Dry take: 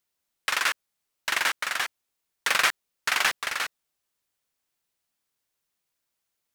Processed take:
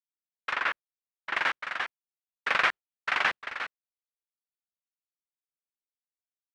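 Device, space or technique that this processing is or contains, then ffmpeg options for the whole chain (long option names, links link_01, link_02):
hearing-loss simulation: -filter_complex "[0:a]lowpass=2500,agate=range=-33dB:threshold=-26dB:ratio=3:detection=peak,asettb=1/sr,asplit=3[link_01][link_02][link_03];[link_01]atrim=end=0.534[link_04];[link_02]atrim=start=0.53:end=1.36,asetpts=PTS-STARTPTS,afade=type=in:duration=0.004:curve=qsin,afade=type=out:start_time=0.826:duration=0.004:curve=qsin,highshelf=frequency=4500:gain=-9[link_05];[link_03]atrim=start=1.356[link_06];[link_04][link_05]acrossfade=duration=0.004:curve1=hsin:curve2=qsin[link_07];[link_07][link_06]acrossfade=duration=0.004:curve1=qsin:curve2=hsin"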